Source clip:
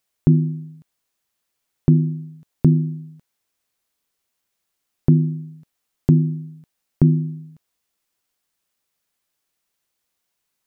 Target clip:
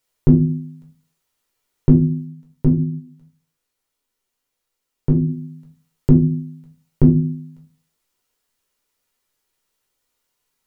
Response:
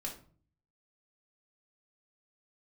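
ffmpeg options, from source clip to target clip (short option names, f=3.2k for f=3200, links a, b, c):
-filter_complex "[0:a]asplit=3[a][b][c];[a]afade=t=out:st=2.24:d=0.02[d];[b]flanger=delay=3.1:depth=4.9:regen=-59:speed=1.7:shape=triangular,afade=t=in:st=2.24:d=0.02,afade=t=out:st=5.27:d=0.02[e];[c]afade=t=in:st=5.27:d=0.02[f];[d][e][f]amix=inputs=3:normalize=0[g];[1:a]atrim=start_sample=2205,asetrate=74970,aresample=44100[h];[g][h]afir=irnorm=-1:irlink=0,volume=8dB"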